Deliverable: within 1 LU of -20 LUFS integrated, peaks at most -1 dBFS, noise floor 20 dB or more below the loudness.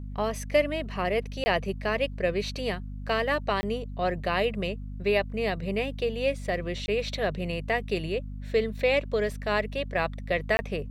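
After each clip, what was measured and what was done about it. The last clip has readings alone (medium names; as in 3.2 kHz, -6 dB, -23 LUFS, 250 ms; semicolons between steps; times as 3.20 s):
dropouts 4; longest dropout 20 ms; hum 50 Hz; highest harmonic 250 Hz; hum level -34 dBFS; loudness -28.5 LUFS; peak level -10.5 dBFS; loudness target -20.0 LUFS
-> interpolate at 1.44/3.61/6.86/10.57 s, 20 ms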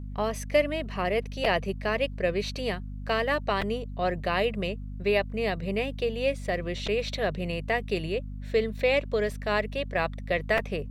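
dropouts 0; hum 50 Hz; highest harmonic 250 Hz; hum level -34 dBFS
-> de-hum 50 Hz, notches 5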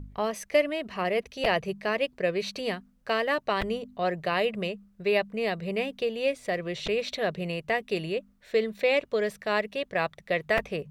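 hum not found; loudness -29.0 LUFS; peak level -11.0 dBFS; loudness target -20.0 LUFS
-> trim +9 dB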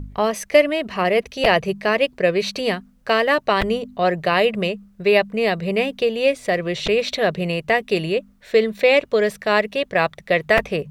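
loudness -20.0 LUFS; peak level -2.0 dBFS; noise floor -53 dBFS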